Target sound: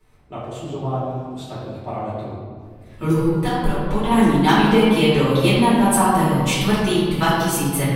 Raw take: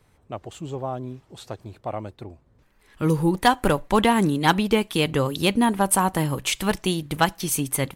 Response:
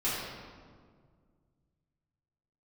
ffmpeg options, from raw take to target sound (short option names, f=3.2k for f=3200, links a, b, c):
-filter_complex "[0:a]asettb=1/sr,asplit=3[a][b][c];[a]atrim=end=3.174[d];[b]atrim=start=3.17:end=4.11,asetpts=PTS-STARTPTS,afade=t=in:d=0.004:c=qsin,afade=t=out:st=0.936:d=0.004:c=qsin,acrossover=split=140[e][f];[f]acompressor=threshold=-32dB:ratio=2[g];[e][g]amix=inputs=2:normalize=0[h];[c]atrim=start=4.106[i];[d][h]acrossfade=d=0.004:c1=hsin:c2=qsin[j];[j][i]acrossfade=d=0.004:c1=qsin:c2=hsin[k];[1:a]atrim=start_sample=2205[l];[k][l]afir=irnorm=-1:irlink=0,volume=-4dB"